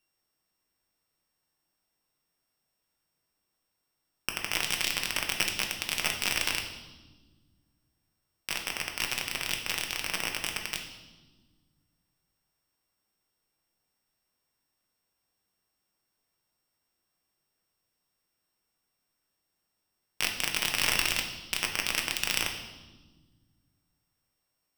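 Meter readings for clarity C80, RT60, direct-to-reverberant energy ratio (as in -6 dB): 9.5 dB, 1.3 s, 2.0 dB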